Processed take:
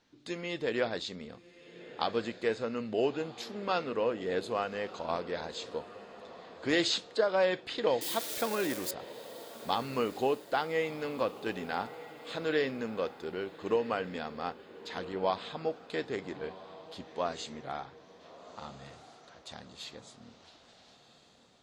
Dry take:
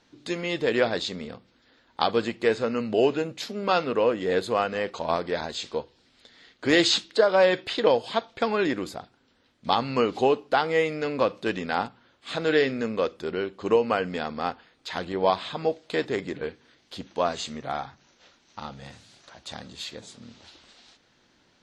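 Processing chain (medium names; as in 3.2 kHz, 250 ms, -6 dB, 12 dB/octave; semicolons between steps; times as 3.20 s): 8.01–8.91 s: zero-crossing glitches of -20 dBFS; echo that smears into a reverb 1327 ms, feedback 40%, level -15 dB; trim -8 dB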